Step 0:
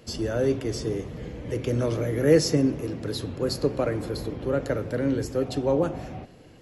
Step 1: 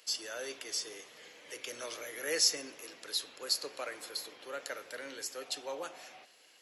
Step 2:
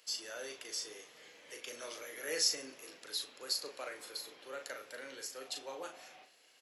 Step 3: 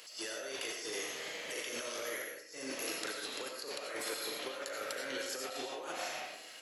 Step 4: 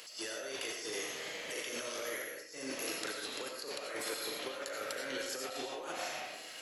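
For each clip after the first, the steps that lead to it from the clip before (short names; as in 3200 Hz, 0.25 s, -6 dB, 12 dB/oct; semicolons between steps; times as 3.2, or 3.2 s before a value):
HPF 540 Hz 12 dB/oct; tilt shelf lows -10 dB, about 1300 Hz; gain -6.5 dB
doubler 38 ms -6 dB; gain -4.5 dB
negative-ratio compressor -51 dBFS, ratio -1; on a send at -1.5 dB: reverb RT60 0.45 s, pre-delay 50 ms; on the sum: gain +6 dB
reverse; upward compressor, threshold -42 dBFS; reverse; low shelf 130 Hz +6.5 dB; notches 60/120 Hz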